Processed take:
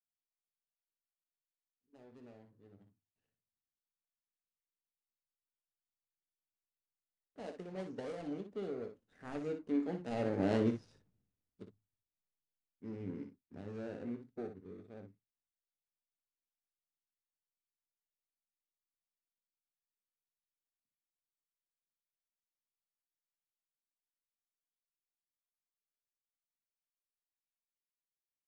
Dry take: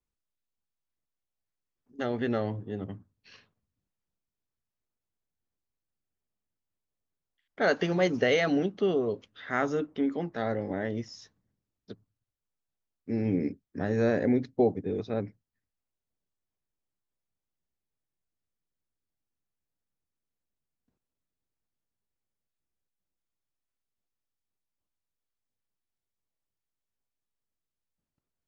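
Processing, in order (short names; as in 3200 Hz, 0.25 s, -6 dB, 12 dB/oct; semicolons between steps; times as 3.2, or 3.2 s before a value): median filter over 41 samples; Doppler pass-by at 10.66, 10 m/s, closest 3 m; on a send: early reflections 21 ms -11.5 dB, 59 ms -8 dB; on the sum: downsampling 22050 Hz; gain +2.5 dB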